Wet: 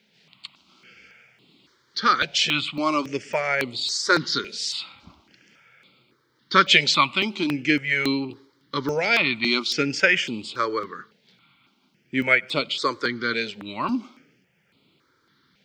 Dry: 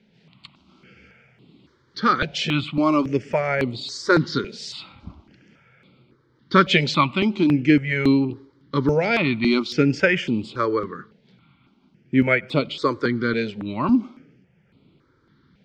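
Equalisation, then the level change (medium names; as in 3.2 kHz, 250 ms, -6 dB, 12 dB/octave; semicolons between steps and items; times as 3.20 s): tilt EQ +3.5 dB/octave; -1.0 dB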